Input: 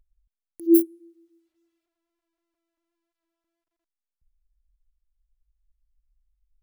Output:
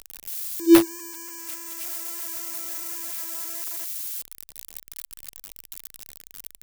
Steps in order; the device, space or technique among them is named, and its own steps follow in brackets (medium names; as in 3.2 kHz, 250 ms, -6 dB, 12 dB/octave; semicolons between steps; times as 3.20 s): budget class-D amplifier (dead-time distortion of 0.13 ms; zero-crossing glitches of -20.5 dBFS); trim +3 dB